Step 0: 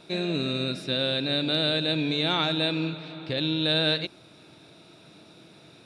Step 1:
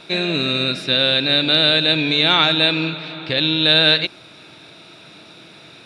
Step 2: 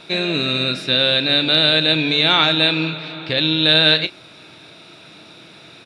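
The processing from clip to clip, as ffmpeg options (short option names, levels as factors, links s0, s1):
-af "equalizer=f=2300:w=0.43:g=8.5,volume=1.68"
-filter_complex "[0:a]asplit=2[s0][s1];[s1]adelay=32,volume=0.2[s2];[s0][s2]amix=inputs=2:normalize=0"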